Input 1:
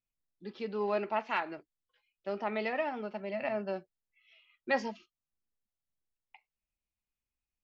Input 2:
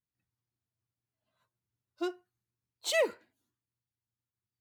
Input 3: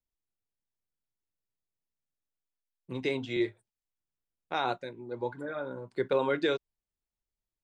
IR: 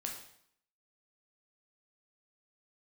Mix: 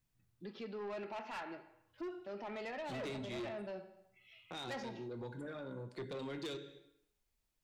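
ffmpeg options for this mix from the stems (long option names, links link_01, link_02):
-filter_complex "[0:a]volume=-1.5dB,asplit=3[link_01][link_02][link_03];[link_02]volume=-5.5dB[link_04];[1:a]bass=frequency=250:gain=10,treble=frequency=4000:gain=-14,volume=1dB,asplit=2[link_05][link_06];[link_06]volume=-7.5dB[link_07];[2:a]acrossover=split=310|3000[link_08][link_09][link_10];[link_09]acompressor=threshold=-48dB:ratio=3[link_11];[link_08][link_11][link_10]amix=inputs=3:normalize=0,volume=2.5dB,asplit=2[link_12][link_13];[link_13]volume=-3.5dB[link_14];[link_03]apad=whole_len=202937[link_15];[link_05][link_15]sidechaincompress=threshold=-46dB:ratio=8:attack=16:release=403[link_16];[3:a]atrim=start_sample=2205[link_17];[link_04][link_07][link_14]amix=inputs=3:normalize=0[link_18];[link_18][link_17]afir=irnorm=-1:irlink=0[link_19];[link_01][link_16][link_12][link_19]amix=inputs=4:normalize=0,asoftclip=type=tanh:threshold=-30dB,alimiter=level_in=14.5dB:limit=-24dB:level=0:latency=1:release=300,volume=-14.5dB"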